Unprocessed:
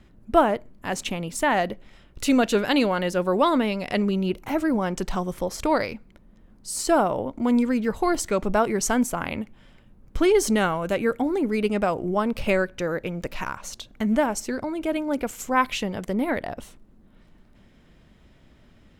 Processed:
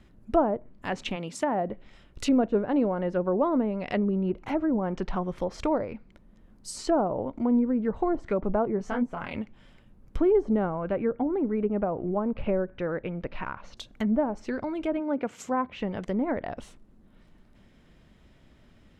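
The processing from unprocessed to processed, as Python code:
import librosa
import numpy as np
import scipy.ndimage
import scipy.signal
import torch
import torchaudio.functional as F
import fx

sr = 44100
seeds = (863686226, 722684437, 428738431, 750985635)

y = fx.highpass(x, sr, hz=fx.line((1.15, 210.0), (1.66, 68.0)), slope=12, at=(1.15, 1.66), fade=0.02)
y = fx.lowpass(y, sr, hz=7600.0, slope=24, at=(4.53, 5.25))
y = fx.detune_double(y, sr, cents=fx.line((8.77, 24.0), (9.34, 43.0)), at=(8.77, 9.34), fade=0.02)
y = fx.air_absorb(y, sr, metres=300.0, at=(10.7, 13.77))
y = fx.highpass(y, sr, hz=fx.line((14.99, 150.0), (15.77, 58.0)), slope=24, at=(14.99, 15.77), fade=0.02)
y = fx.env_lowpass_down(y, sr, base_hz=770.0, full_db=-19.0)
y = y * 10.0 ** (-2.5 / 20.0)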